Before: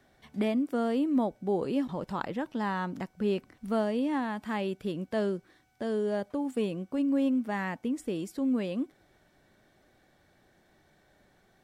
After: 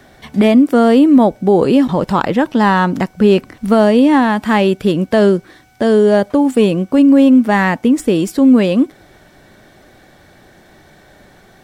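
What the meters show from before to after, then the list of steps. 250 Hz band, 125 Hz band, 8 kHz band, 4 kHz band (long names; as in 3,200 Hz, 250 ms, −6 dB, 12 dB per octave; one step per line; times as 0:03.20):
+19.0 dB, +19.5 dB, can't be measured, +19.0 dB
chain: stylus tracing distortion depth 0.022 ms
boost into a limiter +20.5 dB
level −1 dB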